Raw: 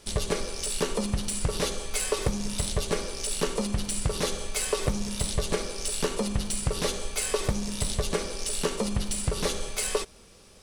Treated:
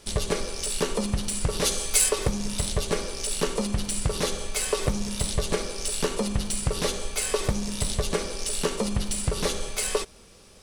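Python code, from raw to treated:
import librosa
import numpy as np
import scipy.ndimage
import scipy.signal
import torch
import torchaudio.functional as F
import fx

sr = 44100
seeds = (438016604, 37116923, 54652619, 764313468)

y = fx.high_shelf(x, sr, hz=3900.0, db=10.5, at=(1.64, 2.08), fade=0.02)
y = y * 10.0 ** (1.5 / 20.0)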